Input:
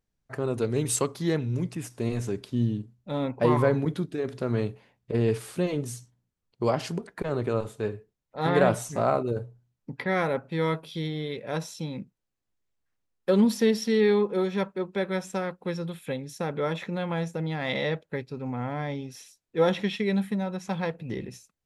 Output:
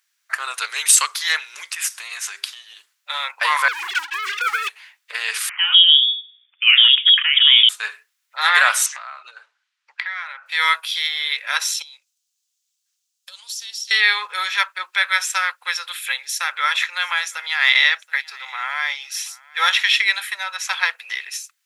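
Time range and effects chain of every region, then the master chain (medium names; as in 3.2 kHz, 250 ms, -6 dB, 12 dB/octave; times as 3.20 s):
1.93–2.77 s: peaking EQ 230 Hz -7 dB 0.84 oct + hum notches 50/100/150/200/250/300/350/400/450/500 Hz + compression 10:1, threshold -32 dBFS
3.68–4.69 s: formants replaced by sine waves + waveshaping leveller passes 3 + compressor with a negative ratio -23 dBFS, ratio -0.5
5.49–7.69 s: bands offset in time highs, lows 160 ms, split 620 Hz + frequency inversion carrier 3.5 kHz
8.86–10.46 s: band-pass 580–4200 Hz + compression 8:1, threshold -40 dBFS
11.82–13.91 s: FFT filter 130 Hz 0 dB, 230 Hz -24 dB, 350 Hz -29 dB, 550 Hz -11 dB, 1.2 kHz -17 dB, 1.9 kHz -21 dB, 3 kHz -7 dB, 6.7 kHz +3 dB, 11 kHz -5 dB + compression 4:1, threshold -48 dBFS
16.09–19.88 s: bass shelf 280 Hz -11 dB + delay 727 ms -23.5 dB
whole clip: inverse Chebyshev high-pass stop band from 230 Hz, stop band 80 dB; loudness maximiser +21 dB; trim -1 dB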